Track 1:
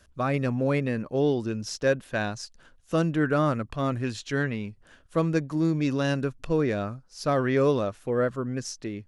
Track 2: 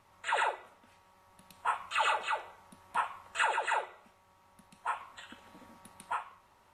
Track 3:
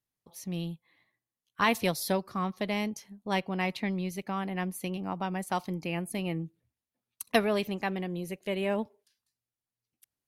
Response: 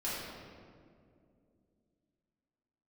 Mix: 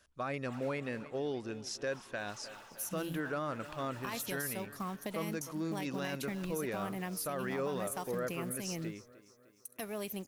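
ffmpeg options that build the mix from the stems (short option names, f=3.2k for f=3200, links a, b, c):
-filter_complex "[0:a]lowshelf=f=320:g=-10.5,volume=-6dB,asplit=2[a][b];[b]volume=-18dB[c];[1:a]asoftclip=type=hard:threshold=-37.5dB,adelay=250,volume=-15.5dB,asplit=2[d][e];[e]volume=-5.5dB[f];[2:a]aexciter=amount=5.3:drive=5.3:freq=5.9k,adelay=2450,volume=-2dB[g];[d][g]amix=inputs=2:normalize=0,acrusher=bits=5:mode=log:mix=0:aa=0.000001,acompressor=threshold=-36dB:ratio=6,volume=0dB[h];[c][f]amix=inputs=2:normalize=0,aecho=0:1:304|608|912|1216|1520|1824|2128|2432:1|0.53|0.281|0.149|0.0789|0.0418|0.0222|0.0117[i];[a][h][i]amix=inputs=3:normalize=0,alimiter=level_in=3.5dB:limit=-24dB:level=0:latency=1:release=35,volume=-3.5dB"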